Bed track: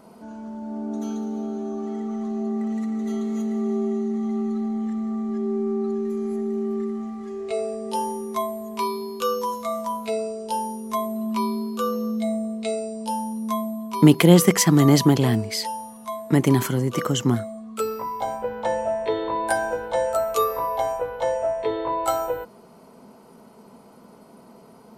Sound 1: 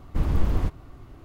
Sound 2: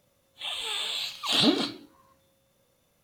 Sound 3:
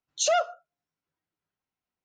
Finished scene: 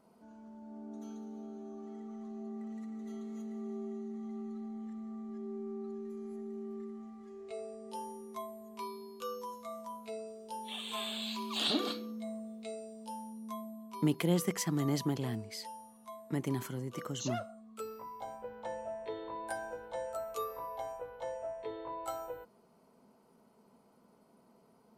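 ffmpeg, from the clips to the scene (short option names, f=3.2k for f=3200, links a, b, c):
-filter_complex "[0:a]volume=-16.5dB[a];[2:a]highpass=230[b];[3:a]aresample=16000,aresample=44100[c];[b]atrim=end=3.03,asetpts=PTS-STARTPTS,volume=-9dB,afade=t=in:d=0.004:c=hsin,afade=t=out:st=3.026:d=0.004:c=hsin,adelay=10270[d];[c]atrim=end=2.04,asetpts=PTS-STARTPTS,volume=-16dB,afade=t=in:d=0.004:c=hsin,afade=t=out:st=2.036:d=0.004:c=hsin,adelay=749700S[e];[a][d][e]amix=inputs=3:normalize=0"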